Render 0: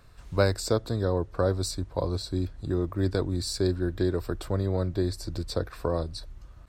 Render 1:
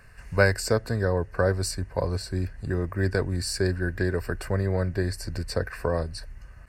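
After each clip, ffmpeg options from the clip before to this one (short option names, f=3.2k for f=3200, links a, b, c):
-af "superequalizer=6b=0.501:11b=3.16:12b=1.78:13b=0.282:16b=1.58,volume=2dB"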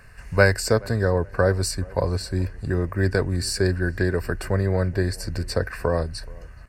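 -filter_complex "[0:a]asplit=2[a][b];[b]adelay=425,lowpass=f=1.9k:p=1,volume=-23.5dB,asplit=2[c][d];[d]adelay=425,lowpass=f=1.9k:p=1,volume=0.38[e];[a][c][e]amix=inputs=3:normalize=0,volume=3.5dB"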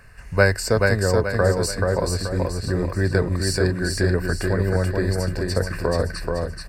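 -af "aecho=1:1:431|862|1293|1724|2155:0.708|0.29|0.119|0.0488|0.02"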